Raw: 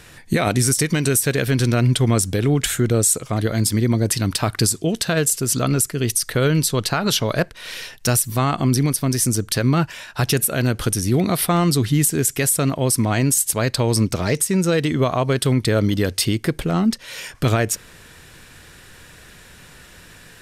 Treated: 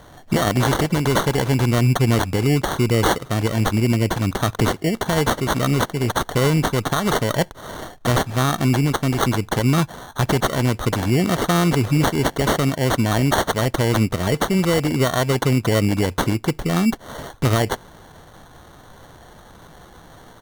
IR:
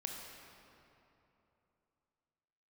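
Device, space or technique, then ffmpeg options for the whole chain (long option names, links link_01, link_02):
crushed at another speed: -af "asetrate=35280,aresample=44100,acrusher=samples=22:mix=1:aa=0.000001,asetrate=55125,aresample=44100"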